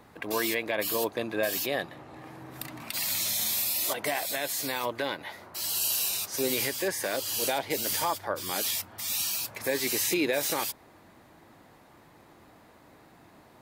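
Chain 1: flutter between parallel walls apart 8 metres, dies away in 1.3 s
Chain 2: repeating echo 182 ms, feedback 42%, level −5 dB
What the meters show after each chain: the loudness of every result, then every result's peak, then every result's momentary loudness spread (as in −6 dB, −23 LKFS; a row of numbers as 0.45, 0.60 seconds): −24.5, −27.0 LKFS; −10.0, −13.5 dBFS; 11, 10 LU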